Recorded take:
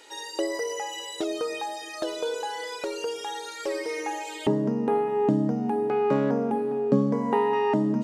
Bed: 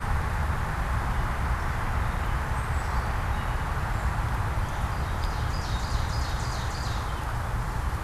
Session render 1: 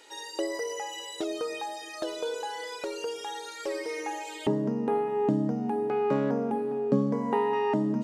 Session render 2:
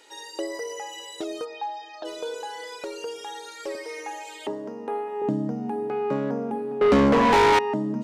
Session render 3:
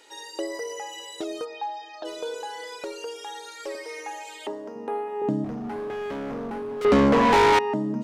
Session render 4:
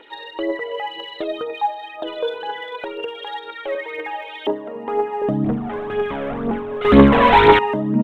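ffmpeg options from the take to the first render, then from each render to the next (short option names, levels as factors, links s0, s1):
-af "volume=0.708"
-filter_complex "[0:a]asplit=3[s0][s1][s2];[s0]afade=t=out:st=1.44:d=0.02[s3];[s1]highpass=360,equalizer=f=360:t=q:w=4:g=-7,equalizer=f=560:t=q:w=4:g=-6,equalizer=f=830:t=q:w=4:g=7,equalizer=f=1200:t=q:w=4:g=-6,equalizer=f=2100:t=q:w=4:g=-9,equalizer=f=4100:t=q:w=4:g=-3,lowpass=f=4500:w=0.5412,lowpass=f=4500:w=1.3066,afade=t=in:st=1.44:d=0.02,afade=t=out:st=2.04:d=0.02[s4];[s2]afade=t=in:st=2.04:d=0.02[s5];[s3][s4][s5]amix=inputs=3:normalize=0,asettb=1/sr,asplit=3[s6][s7][s8];[s6]atrim=end=3.754[s9];[s7]atrim=start=3.75:end=5.22,asetpts=PTS-STARTPTS,afade=t=in:d=0.004:c=qsin,afade=t=out:st=1.466:d=0.004:c=qsin,highpass=420[s10];[s8]atrim=start=5.216[s11];[s9][s10]acrossfade=d=0.004:c1=hsin:c2=qsin[s12];[s12][s11]acrossfade=d=0.004:c1=qsin:c2=hsin,asettb=1/sr,asplit=3[s13][s14][s15];[s13]atrim=end=6.814[s16];[s14]atrim=start=6.81:end=7.59,asetpts=PTS-STARTPTS,afade=t=in:d=0.004:c=qsin,afade=t=out:st=0.776:d=0.004:c=qsin,asplit=2[s17][s18];[s18]highpass=f=720:p=1,volume=39.8,asoftclip=type=tanh:threshold=0.299[s19];[s17][s19]amix=inputs=2:normalize=0,lowpass=f=5000:p=1,volume=0.501[s20];[s15]atrim=start=7.586[s21];[s16][s20]acrossfade=d=0.004:c1=hsin:c2=qsin[s22];[s22][s21]acrossfade=d=0.004:c1=qsin:c2=hsin"
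-filter_complex "[0:a]asettb=1/sr,asplit=3[s0][s1][s2];[s0]atrim=end=2.924[s3];[s1]atrim=start=2.92:end=4.76,asetpts=PTS-STARTPTS,afade=t=in:d=0.004:c=qsin,afade=t=out:st=1.836:d=0.004:c=qsin,equalizer=f=140:t=o:w=1.7:g=-10[s4];[s2]atrim=start=4.756[s5];[s3][s4]acrossfade=d=0.004:c1=hsin:c2=qsin[s6];[s6][s5]acrossfade=d=0.004:c1=qsin:c2=hsin,asettb=1/sr,asplit=3[s7][s8][s9];[s7]atrim=end=5.444[s10];[s8]atrim=start=5.44:end=6.85,asetpts=PTS-STARTPTS,afade=t=in:d=0.004:c=qsin,afade=t=out:st=1.406:d=0.004:c=qsin,asoftclip=type=hard:threshold=0.0335[s11];[s9]atrim=start=6.846[s12];[s10][s11]acrossfade=d=0.004:c1=hsin:c2=qsin[s13];[s13][s12]acrossfade=d=0.004:c1=qsin:c2=hsin"
-af "aresample=8000,aeval=exprs='0.316*sin(PI/2*1.41*val(0)/0.316)':c=same,aresample=44100,aphaser=in_gain=1:out_gain=1:delay=2:decay=0.55:speed=2:type=triangular"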